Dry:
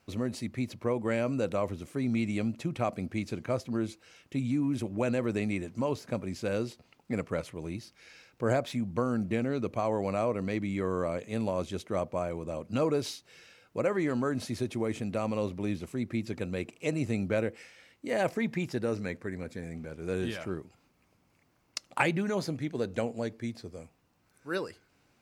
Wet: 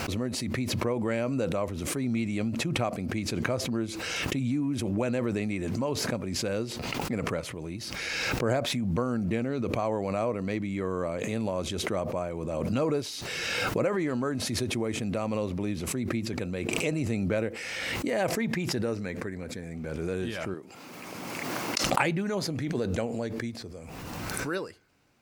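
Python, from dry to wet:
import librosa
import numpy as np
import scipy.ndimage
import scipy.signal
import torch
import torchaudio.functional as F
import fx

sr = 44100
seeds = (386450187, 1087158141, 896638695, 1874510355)

y = fx.highpass(x, sr, hz=220.0, slope=12, at=(20.54, 21.84))
y = fx.pre_swell(y, sr, db_per_s=20.0)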